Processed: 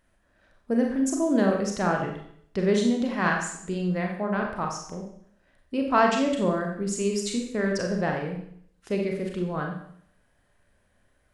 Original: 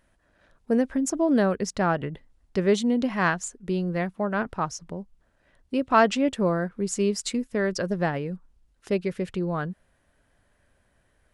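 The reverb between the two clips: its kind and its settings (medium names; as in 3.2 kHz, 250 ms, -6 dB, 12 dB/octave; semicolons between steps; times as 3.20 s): Schroeder reverb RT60 0.65 s, combs from 30 ms, DRR 1 dB; trim -3 dB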